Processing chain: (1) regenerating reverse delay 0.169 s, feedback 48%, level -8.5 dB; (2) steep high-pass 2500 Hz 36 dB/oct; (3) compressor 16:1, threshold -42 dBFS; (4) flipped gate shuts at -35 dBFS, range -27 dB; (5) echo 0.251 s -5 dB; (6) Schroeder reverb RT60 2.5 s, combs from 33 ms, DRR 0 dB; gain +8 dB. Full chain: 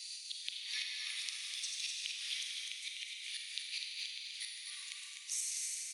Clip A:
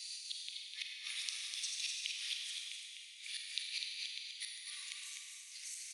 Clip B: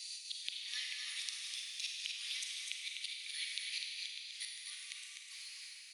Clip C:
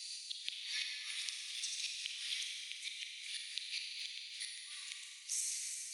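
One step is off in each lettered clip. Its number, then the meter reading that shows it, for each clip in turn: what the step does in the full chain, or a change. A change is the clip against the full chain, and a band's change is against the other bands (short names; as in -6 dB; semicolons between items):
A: 3, mean gain reduction 2.0 dB; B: 1, crest factor change +1.5 dB; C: 5, echo-to-direct 2.0 dB to 0.0 dB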